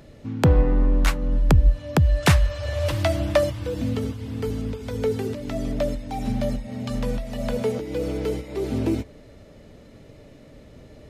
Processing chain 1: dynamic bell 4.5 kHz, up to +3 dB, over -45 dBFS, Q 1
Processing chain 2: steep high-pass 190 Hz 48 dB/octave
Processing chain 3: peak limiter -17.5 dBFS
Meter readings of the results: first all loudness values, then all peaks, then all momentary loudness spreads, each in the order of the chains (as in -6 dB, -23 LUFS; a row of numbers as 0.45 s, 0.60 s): -24.0 LUFS, -28.0 LUFS, -28.0 LUFS; -5.5 dBFS, -6.0 dBFS, -17.5 dBFS; 10 LU, 8 LU, 4 LU